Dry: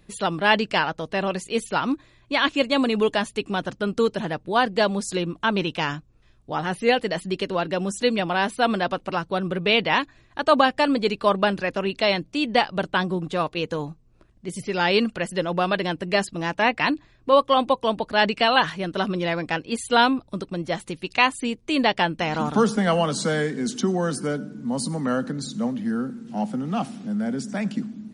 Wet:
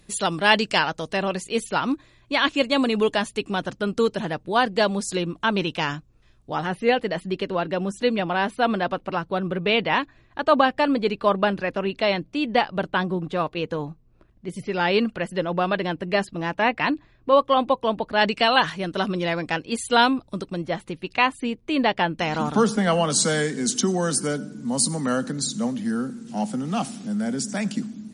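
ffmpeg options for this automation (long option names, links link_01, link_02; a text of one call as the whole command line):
ffmpeg -i in.wav -af "asetnsamples=nb_out_samples=441:pad=0,asendcmd='1.17 equalizer g 1.5;6.67 equalizer g -9;18.21 equalizer g 2;20.64 equalizer g -9.5;22.18 equalizer g 2;23.1 equalizer g 11.5',equalizer=frequency=8200:width_type=o:width=1.8:gain=9.5" out.wav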